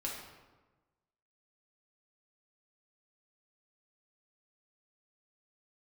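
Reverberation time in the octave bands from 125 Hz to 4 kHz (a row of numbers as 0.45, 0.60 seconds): 1.4, 1.4, 1.3, 1.2, 0.95, 0.75 seconds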